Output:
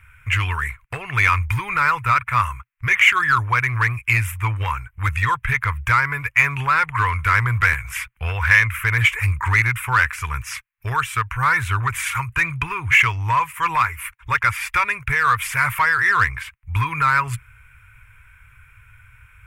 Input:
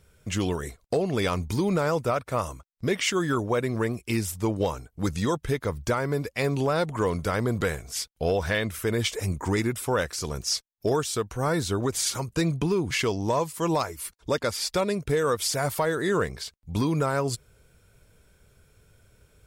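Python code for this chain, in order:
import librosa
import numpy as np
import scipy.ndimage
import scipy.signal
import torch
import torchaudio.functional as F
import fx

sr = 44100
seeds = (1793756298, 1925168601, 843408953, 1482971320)

p1 = fx.curve_eq(x, sr, hz=(120.0, 190.0, 660.0, 1000.0, 2400.0, 4400.0, 11000.0), db=(0, -27, -22, 3, 11, -23, -7))
p2 = np.clip(10.0 ** (24.0 / 20.0) * p1, -1.0, 1.0) / 10.0 ** (24.0 / 20.0)
p3 = p1 + F.gain(torch.from_numpy(p2), -4.0).numpy()
p4 = fx.band_squash(p3, sr, depth_pct=100, at=(7.73, 8.17))
y = F.gain(torch.from_numpy(p4), 5.5).numpy()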